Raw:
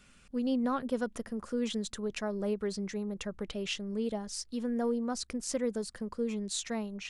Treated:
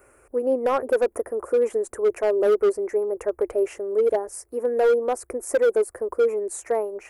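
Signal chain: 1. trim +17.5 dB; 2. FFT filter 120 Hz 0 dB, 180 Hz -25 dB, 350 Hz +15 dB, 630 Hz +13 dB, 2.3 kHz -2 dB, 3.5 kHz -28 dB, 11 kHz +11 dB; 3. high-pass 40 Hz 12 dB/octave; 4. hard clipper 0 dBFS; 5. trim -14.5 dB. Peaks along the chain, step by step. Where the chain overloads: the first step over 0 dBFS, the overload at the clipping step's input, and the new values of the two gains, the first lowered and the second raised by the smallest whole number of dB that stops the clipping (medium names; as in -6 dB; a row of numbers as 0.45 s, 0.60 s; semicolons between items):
-2.0 dBFS, +7.0 dBFS, +7.0 dBFS, 0.0 dBFS, -14.5 dBFS; step 2, 7.0 dB; step 1 +10.5 dB, step 5 -7.5 dB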